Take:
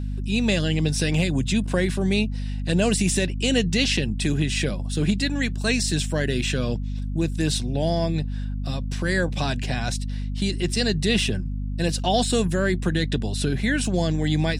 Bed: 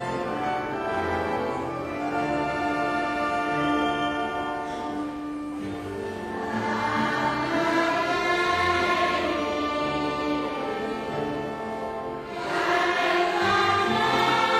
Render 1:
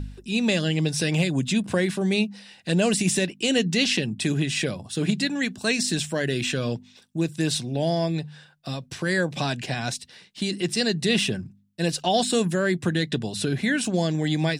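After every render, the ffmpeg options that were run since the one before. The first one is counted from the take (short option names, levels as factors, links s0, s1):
-af "bandreject=f=50:t=h:w=4,bandreject=f=100:t=h:w=4,bandreject=f=150:t=h:w=4,bandreject=f=200:t=h:w=4,bandreject=f=250:t=h:w=4"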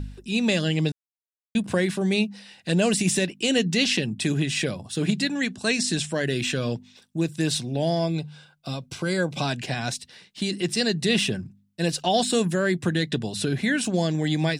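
-filter_complex "[0:a]asettb=1/sr,asplit=3[s0][s1][s2];[s0]atrim=end=5.424[s3];[s1]atrim=start=5.42:end=6.25,asetpts=PTS-STARTPTS,afade=t=in:d=0.004:c=qsin,afade=t=out:st=0.826:d=0.004:c=qsin,lowpass=f=11000:w=0.5412,lowpass=f=11000:w=1.3066[s4];[s2]atrim=start=6.246[s5];[s3][s4]acrossfade=d=0.004:c1=hsin:c2=qsin[s6];[s6][s5]acrossfade=d=0.004:c1=qsin:c2=hsin,asettb=1/sr,asplit=3[s7][s8][s9];[s7]atrim=end=7.994[s10];[s8]atrim=start=7.99:end=9.48,asetpts=PTS-STARTPTS,afade=t=in:d=0.004:c=qsin,afade=t=out:st=1.486:d=0.004:c=qsin,asuperstop=centerf=1800:order=8:qfactor=6.1[s11];[s9]atrim=start=9.476[s12];[s10][s11]acrossfade=d=0.004:c1=hsin:c2=qsin[s13];[s13][s12]acrossfade=d=0.004:c1=qsin:c2=hsin,asplit=3[s14][s15][s16];[s14]atrim=end=0.92,asetpts=PTS-STARTPTS,afade=t=out:st=0.916:d=0.004:c=hsin[s17];[s15]atrim=start=0.92:end=1.55,asetpts=PTS-STARTPTS,volume=0[s18];[s16]atrim=start=1.55,asetpts=PTS-STARTPTS,afade=t=in:d=0.004:c=hsin[s19];[s17][s18][s19]concat=n=3:v=0:a=1"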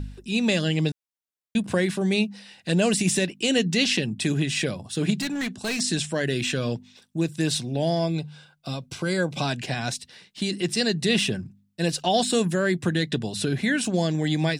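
-filter_complex "[0:a]asplit=3[s0][s1][s2];[s0]afade=t=out:st=5.17:d=0.02[s3];[s1]asoftclip=type=hard:threshold=0.0596,afade=t=in:st=5.17:d=0.02,afade=t=out:st=5.79:d=0.02[s4];[s2]afade=t=in:st=5.79:d=0.02[s5];[s3][s4][s5]amix=inputs=3:normalize=0"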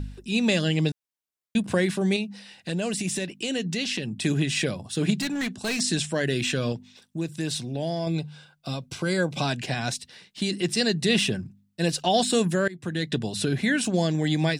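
-filter_complex "[0:a]asettb=1/sr,asplit=3[s0][s1][s2];[s0]atrim=end=2.164[s3];[s1]atrim=start=2.16:end=4.24,asetpts=PTS-STARTPTS,afade=t=in:d=0.004:c=qsin,afade=t=out:st=2.076:d=0.004:c=qsin,acompressor=threshold=0.0355:ratio=2:attack=3.2:release=140:knee=1:detection=peak[s4];[s2]atrim=start=4.236[s5];[s3][s4]acrossfade=d=0.004:c1=hsin:c2=qsin[s6];[s6][s5]acrossfade=d=0.004:c1=qsin:c2=hsin,asettb=1/sr,asplit=3[s7][s8][s9];[s7]atrim=end=6.724[s10];[s8]atrim=start=6.72:end=8.07,asetpts=PTS-STARTPTS,afade=t=in:d=0.004:c=qsin,afade=t=out:st=1.346:d=0.004:c=qsin,acompressor=threshold=0.0251:ratio=1.5:attack=3.2:release=140:knee=1:detection=peak[s11];[s9]atrim=start=8.066[s12];[s10][s11]acrossfade=d=0.004:c1=hsin:c2=qsin[s13];[s13][s12]acrossfade=d=0.004:c1=qsin:c2=hsin,asplit=2[s14][s15];[s14]atrim=end=12.68,asetpts=PTS-STARTPTS,afade=t=out:st=12.676:d=0.004:c=hsin:silence=0.0707946[s16];[s15]atrim=start=12.68,asetpts=PTS-STARTPTS,afade=t=in:d=0.5:silence=0.0707946[s17];[s16][s17]concat=n=2:v=0:a=1"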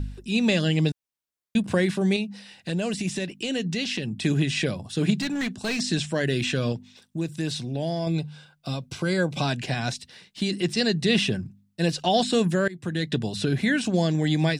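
-filter_complex "[0:a]acrossover=split=6500[s0][s1];[s1]acompressor=threshold=0.00562:ratio=4:attack=1:release=60[s2];[s0][s2]amix=inputs=2:normalize=0,lowshelf=f=160:g=3.5"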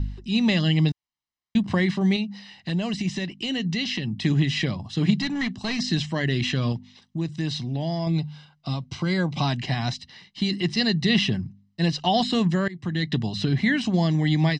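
-af "lowpass=f=5800:w=0.5412,lowpass=f=5800:w=1.3066,aecho=1:1:1:0.55"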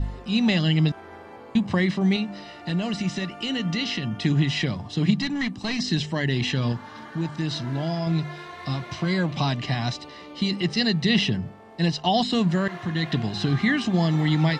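-filter_complex "[1:a]volume=0.15[s0];[0:a][s0]amix=inputs=2:normalize=0"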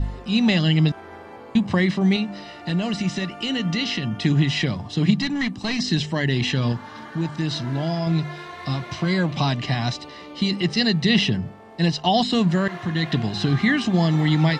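-af "volume=1.33"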